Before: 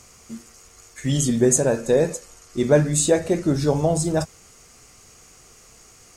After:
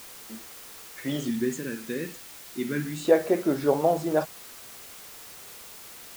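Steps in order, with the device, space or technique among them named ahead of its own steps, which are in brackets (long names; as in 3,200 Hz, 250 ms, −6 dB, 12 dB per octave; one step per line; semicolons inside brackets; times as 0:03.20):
0:01.28–0:03.05: Chebyshev band-stop filter 260–2,000 Hz, order 2
wax cylinder (band-pass filter 320–2,300 Hz; tape wow and flutter; white noise bed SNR 16 dB)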